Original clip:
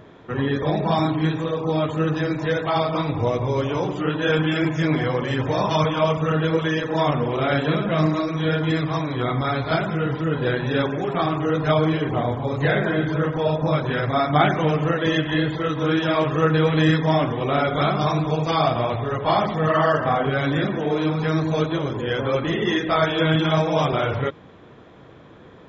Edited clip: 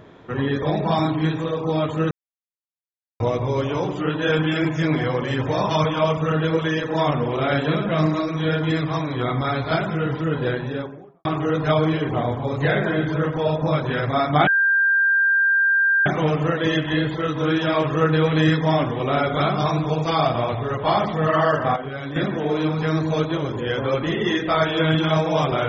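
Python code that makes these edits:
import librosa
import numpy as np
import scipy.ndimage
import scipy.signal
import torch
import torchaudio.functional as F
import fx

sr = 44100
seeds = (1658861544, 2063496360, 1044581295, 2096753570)

y = fx.studio_fade_out(x, sr, start_s=10.31, length_s=0.94)
y = fx.edit(y, sr, fx.silence(start_s=2.11, length_s=1.09),
    fx.insert_tone(at_s=14.47, length_s=1.59, hz=1590.0, db=-14.5),
    fx.clip_gain(start_s=20.17, length_s=0.4, db=-8.5), tone=tone)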